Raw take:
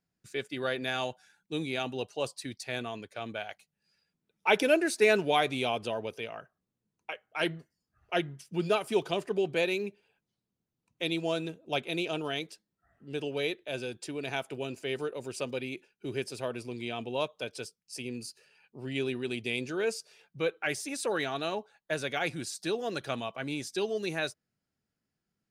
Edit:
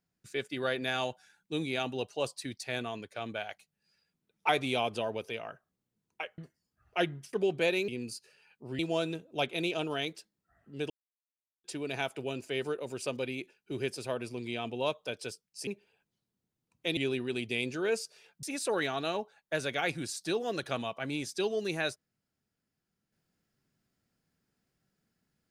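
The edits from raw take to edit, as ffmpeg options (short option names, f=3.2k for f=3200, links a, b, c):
-filter_complex "[0:a]asplit=11[a][b][c][d][e][f][g][h][i][j][k];[a]atrim=end=4.492[l];[b]atrim=start=5.378:end=7.272[m];[c]atrim=start=7.538:end=8.492[n];[d]atrim=start=9.278:end=9.832[o];[e]atrim=start=18.008:end=18.922[p];[f]atrim=start=11.128:end=13.24,asetpts=PTS-STARTPTS,afade=t=out:st=2.108:d=0.004:c=hsin[q];[g]atrim=start=13.24:end=13.98,asetpts=PTS-STARTPTS,volume=0[r];[h]atrim=start=13.98:end=18.012,asetpts=PTS-STARTPTS,afade=t=in:d=0.004:c=hsin[s];[i]atrim=start=9.828:end=11.132[t];[j]atrim=start=18.918:end=20.382[u];[k]atrim=start=20.808[v];[l][m]acrossfade=d=0.004:c1=hsin:c2=hsin[w];[w][n]acrossfade=d=0.004:c1=hsin:c2=hsin[x];[x][o]acrossfade=d=0.004:c1=hsin:c2=hsin[y];[y][p]acrossfade=d=0.004:c1=hsin:c2=hsin[z];[q][r][s]concat=n=3:v=0:a=1[aa];[z][aa]acrossfade=d=0.004:c1=hsin:c2=hsin[ab];[ab][t]acrossfade=d=0.004:c1=hsin:c2=hsin[ac];[ac][u]acrossfade=d=0.004:c1=hsin:c2=hsin[ad];[ad][v]acrossfade=d=0.004:c1=hsin:c2=hsin"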